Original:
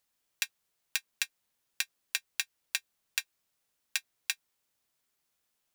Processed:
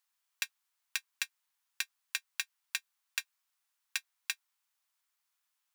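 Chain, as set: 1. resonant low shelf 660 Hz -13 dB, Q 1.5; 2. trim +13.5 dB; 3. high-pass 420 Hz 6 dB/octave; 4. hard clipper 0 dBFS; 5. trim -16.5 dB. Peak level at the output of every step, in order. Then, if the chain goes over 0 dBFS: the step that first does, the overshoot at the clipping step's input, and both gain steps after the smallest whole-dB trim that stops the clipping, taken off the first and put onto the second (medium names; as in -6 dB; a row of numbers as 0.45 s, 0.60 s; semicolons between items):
-6.5 dBFS, +7.0 dBFS, +7.0 dBFS, 0.0 dBFS, -16.5 dBFS; step 2, 7.0 dB; step 2 +6.5 dB, step 5 -9.5 dB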